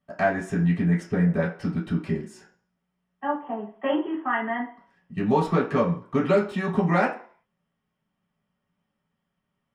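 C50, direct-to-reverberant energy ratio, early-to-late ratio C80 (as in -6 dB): 8.5 dB, -6.5 dB, 13.0 dB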